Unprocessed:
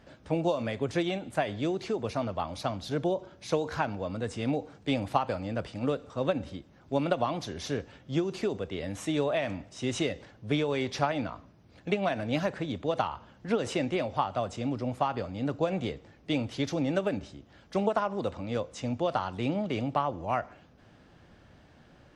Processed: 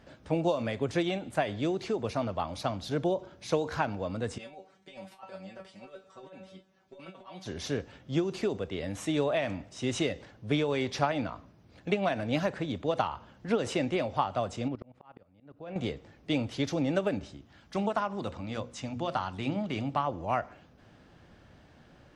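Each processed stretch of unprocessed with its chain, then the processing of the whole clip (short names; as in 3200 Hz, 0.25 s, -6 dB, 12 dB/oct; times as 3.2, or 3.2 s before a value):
4.38–7.46 low shelf 240 Hz -11.5 dB + negative-ratio compressor -34 dBFS, ratio -0.5 + resonator 190 Hz, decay 0.17 s, mix 100%
14.68–15.76 LPF 3200 Hz + level quantiser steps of 17 dB + auto swell 0.587 s
17.37–20.07 bell 490 Hz -6.5 dB 0.8 oct + notches 60/120/180/240/300/360/420/480/540 Hz
whole clip: dry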